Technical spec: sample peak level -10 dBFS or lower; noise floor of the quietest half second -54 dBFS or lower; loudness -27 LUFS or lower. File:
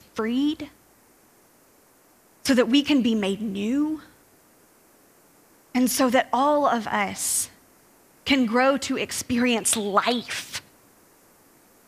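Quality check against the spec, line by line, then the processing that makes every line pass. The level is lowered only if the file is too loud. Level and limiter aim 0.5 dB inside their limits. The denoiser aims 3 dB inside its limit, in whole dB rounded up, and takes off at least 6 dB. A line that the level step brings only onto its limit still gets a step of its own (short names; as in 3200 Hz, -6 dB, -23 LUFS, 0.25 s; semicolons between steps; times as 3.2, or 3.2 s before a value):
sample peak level -6.0 dBFS: fail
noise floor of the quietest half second -58 dBFS: OK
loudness -23.0 LUFS: fail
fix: gain -4.5 dB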